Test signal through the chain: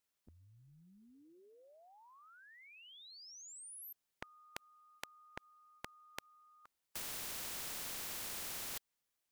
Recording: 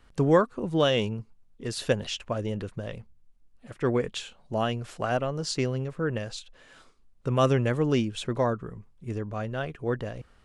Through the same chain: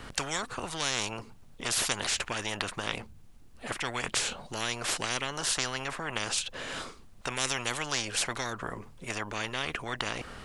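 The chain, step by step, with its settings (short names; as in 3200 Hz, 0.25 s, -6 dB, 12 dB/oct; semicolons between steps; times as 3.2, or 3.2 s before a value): spectral compressor 10:1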